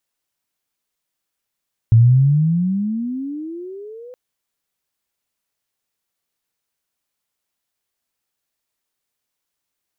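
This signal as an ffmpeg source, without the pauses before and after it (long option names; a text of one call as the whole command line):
ffmpeg -f lavfi -i "aevalsrc='pow(10,(-6-28.5*t/2.22)/20)*sin(2*PI*110*2.22/(26.5*log(2)/12)*(exp(26.5*log(2)/12*t/2.22)-1))':duration=2.22:sample_rate=44100" out.wav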